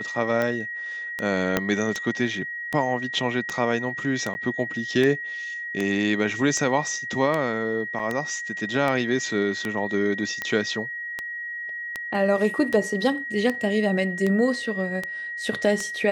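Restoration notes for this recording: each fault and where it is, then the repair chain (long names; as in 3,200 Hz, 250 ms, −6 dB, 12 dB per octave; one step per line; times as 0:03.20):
scratch tick 78 rpm −13 dBFS
whistle 1,900 Hz −30 dBFS
0:01.57: click −6 dBFS
0:04.34–0:04.35: drop-out 10 ms
0:07.99–0:08.00: drop-out 5.2 ms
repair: click removal
notch filter 1,900 Hz, Q 30
repair the gap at 0:04.34, 10 ms
repair the gap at 0:07.99, 5.2 ms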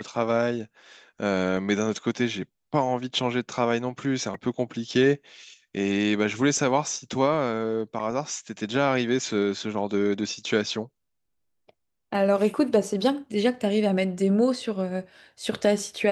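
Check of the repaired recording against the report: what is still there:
0:01.57: click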